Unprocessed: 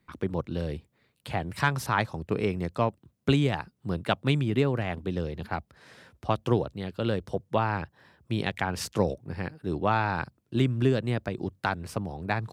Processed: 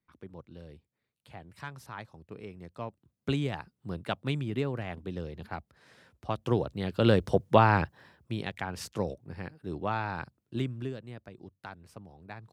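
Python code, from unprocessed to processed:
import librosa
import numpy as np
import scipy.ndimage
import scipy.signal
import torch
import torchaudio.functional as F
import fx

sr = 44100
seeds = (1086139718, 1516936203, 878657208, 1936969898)

y = fx.gain(x, sr, db=fx.line((2.53, -16.5), (3.33, -6.5), (6.28, -6.5), (7.08, 5.5), (7.82, 5.5), (8.41, -6.5), (10.57, -6.5), (11.02, -16.0)))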